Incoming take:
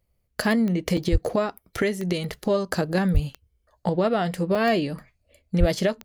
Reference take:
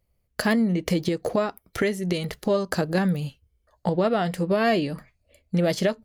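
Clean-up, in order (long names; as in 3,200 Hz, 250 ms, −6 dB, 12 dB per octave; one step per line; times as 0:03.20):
click removal
0:01.11–0:01.23: high-pass filter 140 Hz 24 dB per octave
0:03.13–0:03.25: high-pass filter 140 Hz 24 dB per octave
0:05.59–0:05.71: high-pass filter 140 Hz 24 dB per octave
repair the gap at 0:00.97/0:04.55, 3.9 ms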